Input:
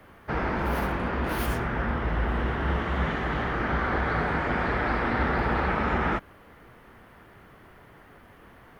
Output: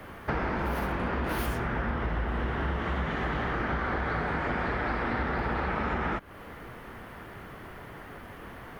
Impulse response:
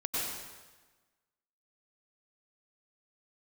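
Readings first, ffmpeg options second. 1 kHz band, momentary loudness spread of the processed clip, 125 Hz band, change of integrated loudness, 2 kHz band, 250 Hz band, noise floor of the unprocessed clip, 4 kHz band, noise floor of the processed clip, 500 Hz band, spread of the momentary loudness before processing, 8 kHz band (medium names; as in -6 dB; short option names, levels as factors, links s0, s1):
-3.0 dB, 15 LU, -3.0 dB, -3.5 dB, -3.0 dB, -3.0 dB, -53 dBFS, -3.0 dB, -45 dBFS, -3.0 dB, 3 LU, no reading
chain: -af "acompressor=threshold=0.0178:ratio=6,volume=2.37"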